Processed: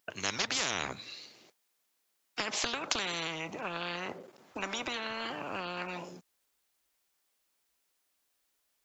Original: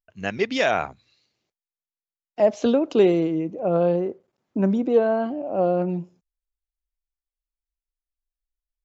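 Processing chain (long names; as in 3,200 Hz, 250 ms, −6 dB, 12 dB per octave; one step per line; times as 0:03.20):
high-pass filter 220 Hz 12 dB per octave
downward compressor 4 to 1, threshold −23 dBFS, peak gain reduction 9.5 dB
every bin compressed towards the loudest bin 10 to 1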